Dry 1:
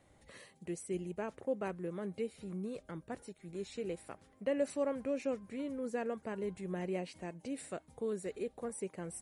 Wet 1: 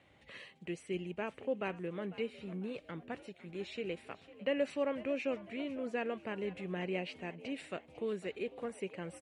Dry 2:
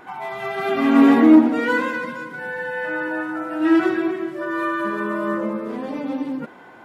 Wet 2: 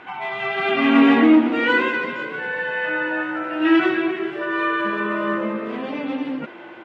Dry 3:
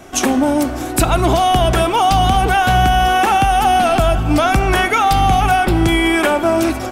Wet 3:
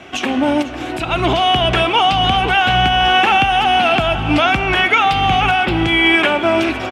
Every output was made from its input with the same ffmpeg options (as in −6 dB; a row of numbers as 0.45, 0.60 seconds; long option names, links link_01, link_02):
-filter_complex "[0:a]highpass=72,aemphasis=mode=production:type=50fm,alimiter=limit=-5dB:level=0:latency=1:release=306,lowpass=frequency=2800:width_type=q:width=2.5,asplit=5[link_01][link_02][link_03][link_04][link_05];[link_02]adelay=500,afreqshift=64,volume=-17.5dB[link_06];[link_03]adelay=1000,afreqshift=128,volume=-24.6dB[link_07];[link_04]adelay=1500,afreqshift=192,volume=-31.8dB[link_08];[link_05]adelay=2000,afreqshift=256,volume=-38.9dB[link_09];[link_01][link_06][link_07][link_08][link_09]amix=inputs=5:normalize=0"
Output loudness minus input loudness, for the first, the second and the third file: +0.5, 0.0, +0.5 LU